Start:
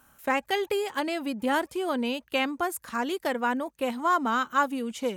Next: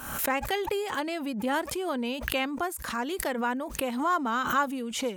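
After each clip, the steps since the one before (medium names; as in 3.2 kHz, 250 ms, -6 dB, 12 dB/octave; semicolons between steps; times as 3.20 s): swell ahead of each attack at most 56 dB/s; trim -2.5 dB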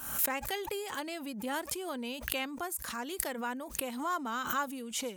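treble shelf 4.5 kHz +10.5 dB; trim -8 dB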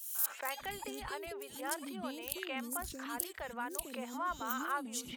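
three bands offset in time highs, mids, lows 150/600 ms, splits 430/3200 Hz; trim -3 dB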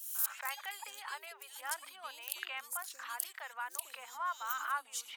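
ladder high-pass 750 Hz, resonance 20%; trim +5 dB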